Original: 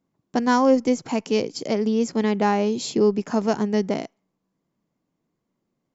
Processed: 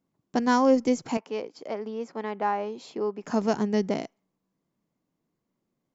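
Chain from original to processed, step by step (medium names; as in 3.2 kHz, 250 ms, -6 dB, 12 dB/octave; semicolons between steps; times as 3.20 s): 1.17–3.24 s: band-pass filter 990 Hz, Q 0.99; trim -3 dB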